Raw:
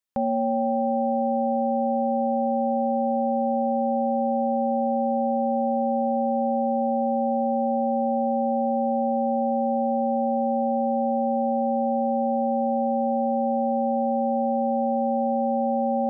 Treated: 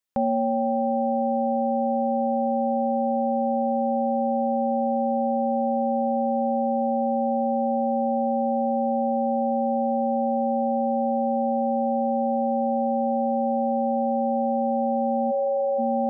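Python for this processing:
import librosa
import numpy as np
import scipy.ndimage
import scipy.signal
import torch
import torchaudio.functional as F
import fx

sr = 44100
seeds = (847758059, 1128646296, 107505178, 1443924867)

y = fx.envelope_sharpen(x, sr, power=3.0, at=(15.3, 15.78), fade=0.02)
y = fx.rider(y, sr, range_db=10, speed_s=0.5)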